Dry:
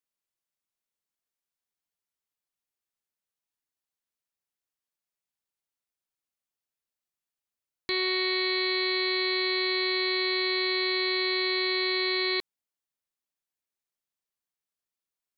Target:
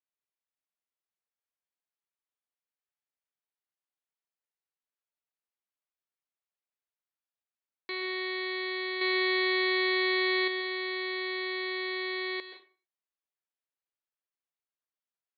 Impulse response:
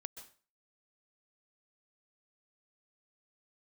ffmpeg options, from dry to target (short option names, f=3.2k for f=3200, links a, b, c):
-filter_complex "[0:a]asettb=1/sr,asplit=3[a][b][c];[a]atrim=end=9.014[d];[b]atrim=start=9.01:end=10.48,asetpts=PTS-STARTPTS,afade=t=in:d=0.004:c=qsin,afade=t=out:st=1.466:d=0.004:c=qsin,acontrast=70[e];[c]atrim=start=10.476[f];[d][e]acrossfade=d=0.004:c1=hsin:c2=qsin[g];[g][f]acrossfade=d=0.004:c1=qsin:c2=hsin,highpass=380,lowpass=3.1k[h];[1:a]atrim=start_sample=2205[i];[h][i]afir=irnorm=-1:irlink=0"